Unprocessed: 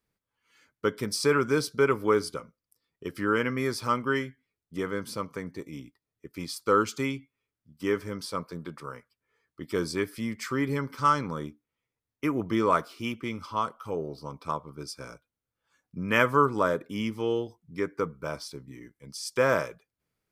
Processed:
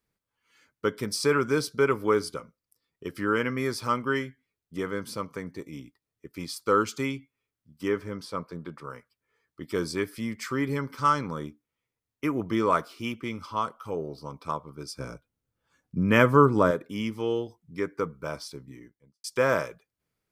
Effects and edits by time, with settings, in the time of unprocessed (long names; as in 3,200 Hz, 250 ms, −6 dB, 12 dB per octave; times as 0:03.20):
0:07.88–0:08.90: high-shelf EQ 4,200 Hz −8.5 dB
0:14.95–0:16.71: low-shelf EQ 470 Hz +9.5 dB
0:18.65–0:19.24: fade out and dull